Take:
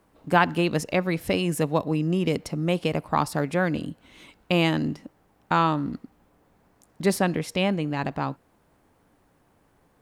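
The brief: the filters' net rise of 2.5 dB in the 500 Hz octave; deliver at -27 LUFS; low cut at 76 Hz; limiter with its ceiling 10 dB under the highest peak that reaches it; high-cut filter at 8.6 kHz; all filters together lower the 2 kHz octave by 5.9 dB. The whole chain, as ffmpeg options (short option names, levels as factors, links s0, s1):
-af "highpass=76,lowpass=8600,equalizer=f=500:t=o:g=3.5,equalizer=f=2000:t=o:g=-8.5,volume=1.12,alimiter=limit=0.168:level=0:latency=1"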